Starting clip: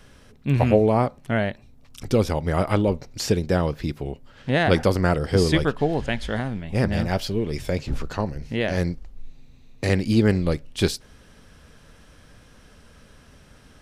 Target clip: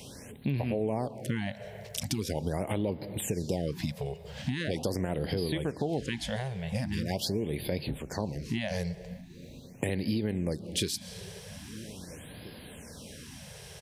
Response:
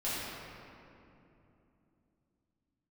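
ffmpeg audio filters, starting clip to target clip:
-filter_complex "[0:a]highshelf=frequency=5300:gain=7,alimiter=limit=-15.5dB:level=0:latency=1:release=186,equalizer=frequency=1300:width=2.8:gain=-13.5,asplit=2[link_01][link_02];[link_02]adelay=1633,volume=-28dB,highshelf=frequency=4000:gain=-36.7[link_03];[link_01][link_03]amix=inputs=2:normalize=0,asplit=2[link_04][link_05];[1:a]atrim=start_sample=2205,asetrate=74970,aresample=44100,adelay=117[link_06];[link_05][link_06]afir=irnorm=-1:irlink=0,volume=-21.5dB[link_07];[link_04][link_07]amix=inputs=2:normalize=0,acompressor=threshold=-36dB:ratio=4,highpass=96,afftfilt=real='re*(1-between(b*sr/1024,250*pow(7400/250,0.5+0.5*sin(2*PI*0.42*pts/sr))/1.41,250*pow(7400/250,0.5+0.5*sin(2*PI*0.42*pts/sr))*1.41))':imag='im*(1-between(b*sr/1024,250*pow(7400/250,0.5+0.5*sin(2*PI*0.42*pts/sr))/1.41,250*pow(7400/250,0.5+0.5*sin(2*PI*0.42*pts/sr))*1.41))':win_size=1024:overlap=0.75,volume=7dB"

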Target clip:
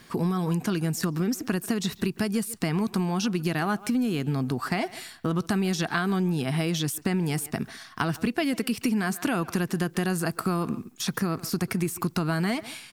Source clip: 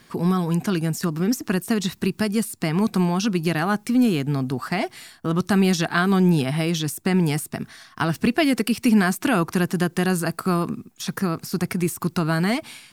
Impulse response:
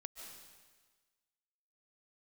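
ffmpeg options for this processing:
-filter_complex "[0:a]asplit=2[link_01][link_02];[link_02]adelay=140,highpass=300,lowpass=3400,asoftclip=type=hard:threshold=-16dB,volume=-20dB[link_03];[link_01][link_03]amix=inputs=2:normalize=0,acompressor=threshold=-24dB:ratio=6,volume=1dB"

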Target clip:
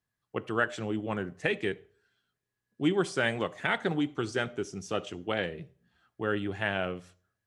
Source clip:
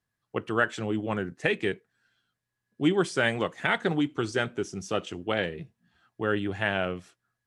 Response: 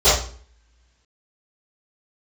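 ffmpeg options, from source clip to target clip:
-filter_complex "[0:a]asplit=2[link_01][link_02];[1:a]atrim=start_sample=2205,adelay=34[link_03];[link_02][link_03]afir=irnorm=-1:irlink=0,volume=-44dB[link_04];[link_01][link_04]amix=inputs=2:normalize=0,volume=-3dB"

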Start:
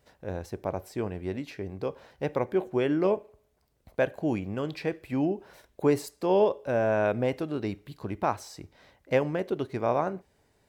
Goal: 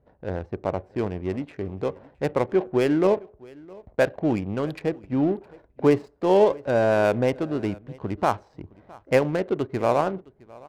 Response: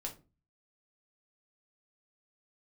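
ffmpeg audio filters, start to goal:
-filter_complex "[0:a]asettb=1/sr,asplit=3[link_01][link_02][link_03];[link_01]atrim=end=4.794[link_04];[link_02]atrim=start=4.79:end=5.35,asetpts=PTS-STARTPTS,afade=type=in:duration=0.004:curve=qsin,afade=type=out:start_time=0.556:duration=0.004:curve=qsin,equalizer=frequency=2700:width=0.58:gain=-5.5[link_05];[link_03]atrim=start=5.346[link_06];[link_04][link_05]acrossfade=duration=0.004:curve1=hsin:curve2=qsin[link_07];[link_07][link_06]acrossfade=duration=0.004:curve1=qsin:curve2=hsin,adynamicsmooth=sensitivity=7.5:basefreq=750,asplit=2[link_08][link_09];[link_09]aecho=0:1:663:0.0668[link_10];[link_08][link_10]amix=inputs=2:normalize=0,volume=5dB"

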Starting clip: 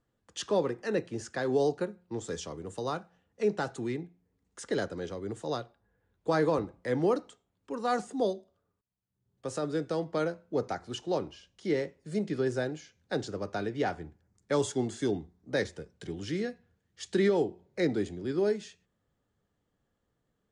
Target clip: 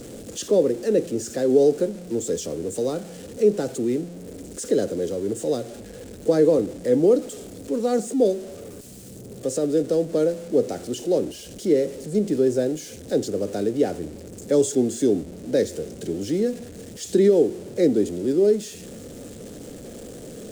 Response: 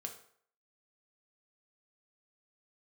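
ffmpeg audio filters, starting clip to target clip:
-af "aeval=exprs='val(0)+0.5*0.0133*sgn(val(0))':channel_layout=same,equalizer=frequency=250:width_type=o:width=1:gain=9,equalizer=frequency=500:width_type=o:width=1:gain=12,equalizer=frequency=1000:width_type=o:width=1:gain=-11,equalizer=frequency=2000:width_type=o:width=1:gain=-3,equalizer=frequency=8000:width_type=o:width=1:gain=10,volume=-1dB"

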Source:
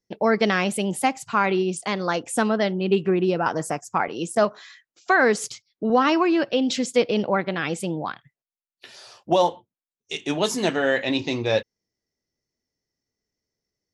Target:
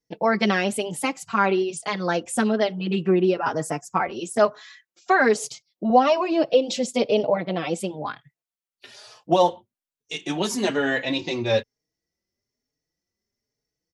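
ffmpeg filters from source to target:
ffmpeg -i in.wav -filter_complex "[0:a]asettb=1/sr,asplit=3[link_01][link_02][link_03];[link_01]atrim=end=5.354[link_04];[link_02]atrim=start=5.35:end=7.81,asetpts=PTS-STARTPTS,afade=type=in:duration=0.004:curve=qsin,afade=type=out:start_time=2.456:duration=0.004:curve=qsin,equalizer=frequency=100:width_type=o:width=0.67:gain=-4,equalizer=frequency=630:width_type=o:width=0.67:gain=9,equalizer=frequency=1600:width_type=o:width=0.67:gain=-10[link_05];[link_03]atrim=start=7.806[link_06];[link_04][link_05]acrossfade=duration=0.004:curve1=hsin:curve2=qsin[link_07];[link_07][link_06]acrossfade=duration=0.004:curve1=qsin:curve2=hsin,asplit=2[link_08][link_09];[link_09]adelay=4.3,afreqshift=1.1[link_10];[link_08][link_10]amix=inputs=2:normalize=1,volume=2.5dB" out.wav

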